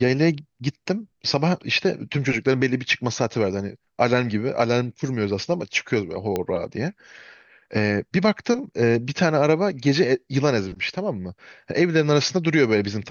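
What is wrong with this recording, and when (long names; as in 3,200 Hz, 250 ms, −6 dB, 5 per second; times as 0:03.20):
0:06.36: click −11 dBFS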